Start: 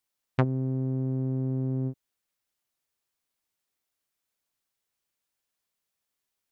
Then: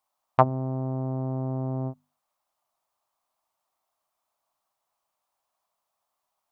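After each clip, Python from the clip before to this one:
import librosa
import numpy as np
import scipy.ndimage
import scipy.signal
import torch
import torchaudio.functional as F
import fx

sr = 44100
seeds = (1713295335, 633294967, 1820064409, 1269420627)

y = fx.band_shelf(x, sr, hz=860.0, db=16.0, octaves=1.3)
y = fx.hum_notches(y, sr, base_hz=50, count=5)
y = y * librosa.db_to_amplitude(-1.0)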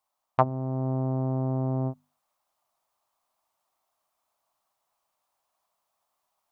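y = fx.rider(x, sr, range_db=10, speed_s=0.5)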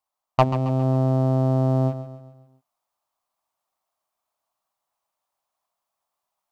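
y = fx.leveller(x, sr, passes=2)
y = fx.echo_feedback(y, sr, ms=136, feedback_pct=47, wet_db=-11.5)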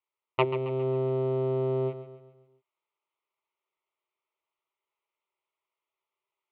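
y = fx.cabinet(x, sr, low_hz=190.0, low_slope=12, high_hz=3600.0, hz=(250.0, 380.0, 570.0, 1100.0, 2100.0), db=(-6, 9, -7, -10, 6))
y = fx.fixed_phaser(y, sr, hz=1100.0, stages=8)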